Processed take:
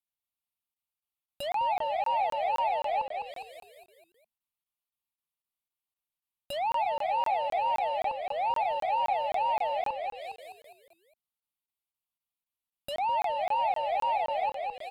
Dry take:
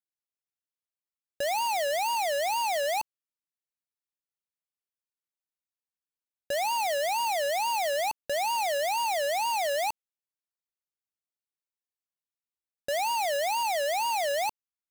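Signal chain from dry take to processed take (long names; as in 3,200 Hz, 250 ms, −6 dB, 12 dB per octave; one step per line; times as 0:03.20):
high-shelf EQ 10,000 Hz +6 dB
phaser with its sweep stopped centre 1,700 Hz, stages 6
on a send: echo with shifted repeats 205 ms, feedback 47%, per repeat −39 Hz, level −5 dB
on the sum: treble cut that deepens with the level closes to 1,700 Hz, closed at −29 dBFS
regular buffer underruns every 0.26 s, samples 1,024, zero, from 0:00.74
level +1.5 dB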